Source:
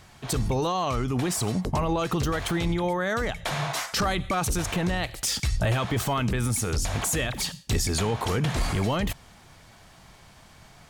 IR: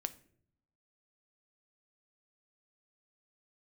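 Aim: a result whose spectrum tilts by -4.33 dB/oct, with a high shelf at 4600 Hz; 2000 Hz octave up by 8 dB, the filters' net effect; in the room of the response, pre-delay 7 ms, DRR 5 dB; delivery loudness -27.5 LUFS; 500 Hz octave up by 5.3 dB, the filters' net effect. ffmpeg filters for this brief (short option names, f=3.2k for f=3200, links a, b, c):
-filter_complex "[0:a]equalizer=f=500:t=o:g=6,equalizer=f=2k:t=o:g=8.5,highshelf=f=4.6k:g=6,asplit=2[a][b];[1:a]atrim=start_sample=2205,adelay=7[c];[b][c]afir=irnorm=-1:irlink=0,volume=-4dB[d];[a][d]amix=inputs=2:normalize=0,volume=-6dB"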